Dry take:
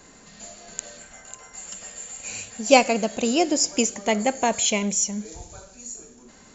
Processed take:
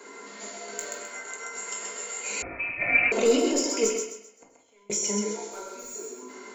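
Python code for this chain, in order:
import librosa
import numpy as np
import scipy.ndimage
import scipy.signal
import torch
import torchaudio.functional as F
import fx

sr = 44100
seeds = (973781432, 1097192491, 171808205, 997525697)

p1 = scipy.signal.sosfilt(scipy.signal.butter(4, 270.0, 'highpass', fs=sr, output='sos'), x)
p2 = fx.over_compress(p1, sr, threshold_db=-24.0, ratio=-0.5)
p3 = fx.clip_hard(p2, sr, threshold_db=-37.5, at=(5.5, 5.93), fade=0.02)
p4 = fx.small_body(p3, sr, hz=(400.0, 1000.0, 1400.0, 2100.0), ring_ms=30, db=13)
p5 = 10.0 ** (-10.5 / 20.0) * np.tanh(p4 / 10.0 ** (-10.5 / 20.0))
p6 = fx.gate_flip(p5, sr, shuts_db=-19.0, range_db=-39, at=(3.89, 4.9))
p7 = fx.doubler(p6, sr, ms=19.0, db=-11)
p8 = p7 + fx.echo_thinned(p7, sr, ms=130, feedback_pct=35, hz=360.0, wet_db=-4, dry=0)
p9 = fx.room_shoebox(p8, sr, seeds[0], volume_m3=330.0, walls='furnished', distance_m=1.6)
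p10 = fx.freq_invert(p9, sr, carrier_hz=2800, at=(2.42, 3.12))
y = p10 * librosa.db_to_amplitude(-5.5)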